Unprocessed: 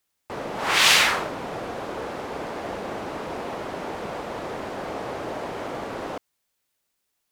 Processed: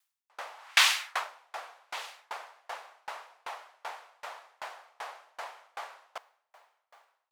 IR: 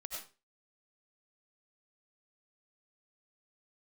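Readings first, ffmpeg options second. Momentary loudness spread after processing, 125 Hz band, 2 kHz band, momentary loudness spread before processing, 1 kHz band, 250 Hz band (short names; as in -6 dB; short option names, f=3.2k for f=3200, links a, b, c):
21 LU, under -40 dB, -7.5 dB, 15 LU, -9.0 dB, under -35 dB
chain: -af "highpass=f=780:w=0.5412,highpass=f=780:w=1.3066,aecho=1:1:1179:0.112,aeval=exprs='val(0)*pow(10,-36*if(lt(mod(2.6*n/s,1),2*abs(2.6)/1000),1-mod(2.6*n/s,1)/(2*abs(2.6)/1000),(mod(2.6*n/s,1)-2*abs(2.6)/1000)/(1-2*abs(2.6)/1000))/20)':c=same,volume=1.5dB"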